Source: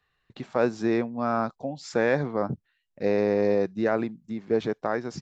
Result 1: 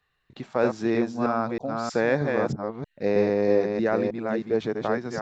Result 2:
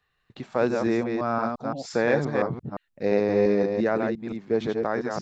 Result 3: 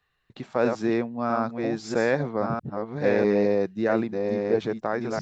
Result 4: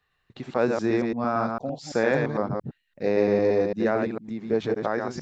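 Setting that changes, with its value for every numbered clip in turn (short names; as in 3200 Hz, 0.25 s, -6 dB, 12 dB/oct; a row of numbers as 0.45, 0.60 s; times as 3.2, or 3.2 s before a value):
reverse delay, time: 0.316, 0.173, 0.649, 0.113 s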